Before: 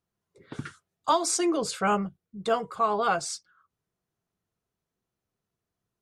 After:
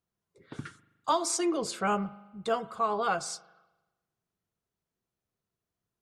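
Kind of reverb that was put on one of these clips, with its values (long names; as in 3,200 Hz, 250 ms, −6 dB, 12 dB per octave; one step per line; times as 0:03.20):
spring reverb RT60 1.1 s, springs 40 ms, chirp 75 ms, DRR 17 dB
level −3.5 dB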